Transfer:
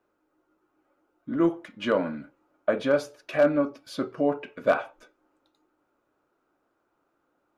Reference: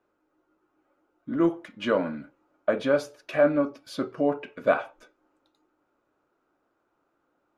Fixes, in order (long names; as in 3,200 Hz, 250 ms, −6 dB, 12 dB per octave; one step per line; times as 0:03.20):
clipped peaks rebuilt −12 dBFS